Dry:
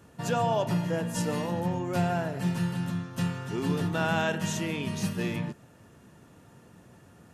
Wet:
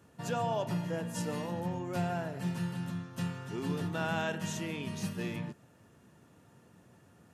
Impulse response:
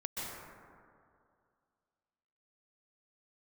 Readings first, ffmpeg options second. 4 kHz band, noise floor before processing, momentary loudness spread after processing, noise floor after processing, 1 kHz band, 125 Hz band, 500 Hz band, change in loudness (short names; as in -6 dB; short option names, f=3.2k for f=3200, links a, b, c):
-6.0 dB, -56 dBFS, 5 LU, -62 dBFS, -6.0 dB, -6.0 dB, -6.0 dB, -6.0 dB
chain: -af "highpass=62,volume=-6dB"